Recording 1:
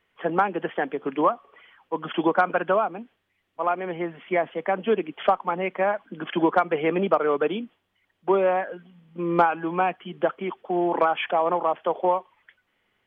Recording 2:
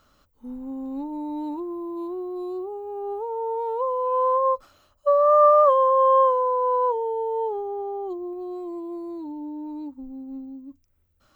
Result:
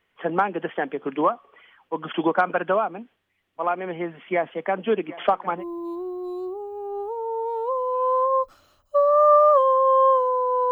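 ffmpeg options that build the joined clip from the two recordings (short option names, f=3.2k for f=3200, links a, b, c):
-filter_complex "[0:a]asplit=3[a][b][c];[a]afade=t=out:st=5.07:d=0.02[d];[b]aecho=1:1:757|1514|2271|3028:0.126|0.0617|0.0302|0.0148,afade=t=in:st=5.07:d=0.02,afade=t=out:st=5.64:d=0.02[e];[c]afade=t=in:st=5.64:d=0.02[f];[d][e][f]amix=inputs=3:normalize=0,apad=whole_dur=10.71,atrim=end=10.71,atrim=end=5.64,asetpts=PTS-STARTPTS[g];[1:a]atrim=start=1.66:end=6.83,asetpts=PTS-STARTPTS[h];[g][h]acrossfade=d=0.1:c1=tri:c2=tri"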